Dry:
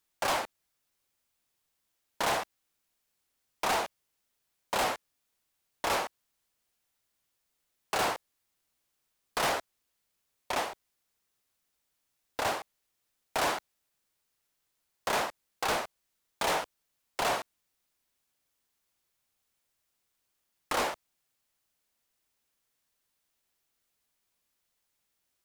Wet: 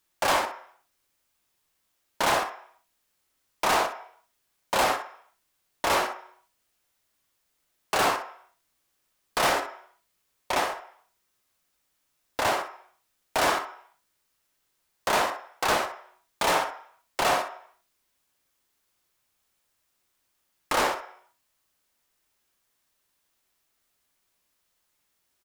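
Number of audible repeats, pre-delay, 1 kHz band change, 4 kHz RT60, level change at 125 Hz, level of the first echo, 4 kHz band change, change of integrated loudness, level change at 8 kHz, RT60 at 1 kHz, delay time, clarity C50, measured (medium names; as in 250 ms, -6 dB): 1, 3 ms, +6.0 dB, 0.65 s, +4.5 dB, -11.0 dB, +5.0 dB, +5.5 dB, +5.0 dB, 0.60 s, 63 ms, 8.0 dB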